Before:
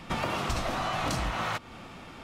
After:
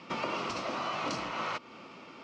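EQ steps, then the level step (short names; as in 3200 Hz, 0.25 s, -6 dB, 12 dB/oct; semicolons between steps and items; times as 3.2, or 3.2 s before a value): speaker cabinet 270–5600 Hz, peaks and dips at 750 Hz -8 dB, 1700 Hz -9 dB, 3600 Hz -7 dB; 0.0 dB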